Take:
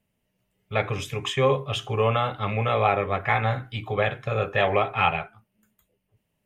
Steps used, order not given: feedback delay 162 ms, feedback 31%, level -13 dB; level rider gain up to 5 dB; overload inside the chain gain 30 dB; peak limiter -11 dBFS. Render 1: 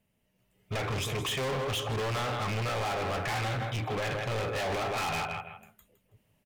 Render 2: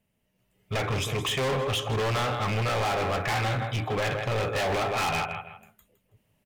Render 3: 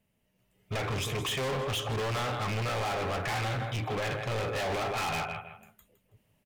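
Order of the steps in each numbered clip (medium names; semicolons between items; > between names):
level rider > feedback delay > peak limiter > overload inside the chain; feedback delay > peak limiter > overload inside the chain > level rider; level rider > peak limiter > feedback delay > overload inside the chain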